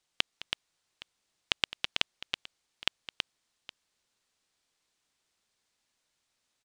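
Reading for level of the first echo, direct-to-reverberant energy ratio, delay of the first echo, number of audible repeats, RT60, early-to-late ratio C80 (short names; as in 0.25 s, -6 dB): -16.0 dB, none, 0.212 s, 3, none, none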